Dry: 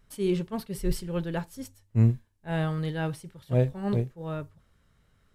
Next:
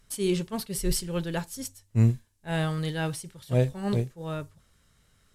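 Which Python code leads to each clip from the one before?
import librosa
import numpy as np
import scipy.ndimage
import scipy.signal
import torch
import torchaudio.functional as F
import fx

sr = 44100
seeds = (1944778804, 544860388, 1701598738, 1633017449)

y = fx.peak_eq(x, sr, hz=8100.0, db=11.5, octaves=2.4)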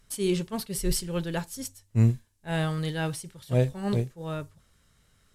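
y = x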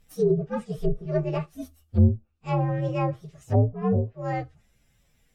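y = fx.partial_stretch(x, sr, pct=124)
y = fx.env_lowpass_down(y, sr, base_hz=400.0, full_db=-22.5)
y = fx.dynamic_eq(y, sr, hz=530.0, q=0.99, threshold_db=-44.0, ratio=4.0, max_db=6)
y = y * librosa.db_to_amplitude(3.5)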